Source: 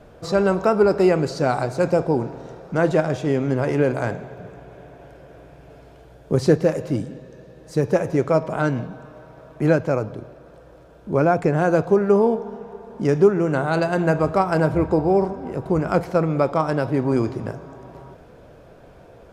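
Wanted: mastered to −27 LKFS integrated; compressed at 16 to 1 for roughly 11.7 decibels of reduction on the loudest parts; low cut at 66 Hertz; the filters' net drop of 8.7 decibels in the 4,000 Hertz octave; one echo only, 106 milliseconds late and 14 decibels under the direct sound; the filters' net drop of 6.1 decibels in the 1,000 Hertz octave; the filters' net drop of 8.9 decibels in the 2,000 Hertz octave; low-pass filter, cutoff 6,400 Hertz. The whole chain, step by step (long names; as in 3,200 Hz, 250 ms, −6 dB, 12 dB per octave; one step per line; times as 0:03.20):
high-pass filter 66 Hz
low-pass filter 6,400 Hz
parametric band 1,000 Hz −7 dB
parametric band 2,000 Hz −8 dB
parametric band 4,000 Hz −8 dB
downward compressor 16 to 1, threshold −23 dBFS
single-tap delay 106 ms −14 dB
level +2.5 dB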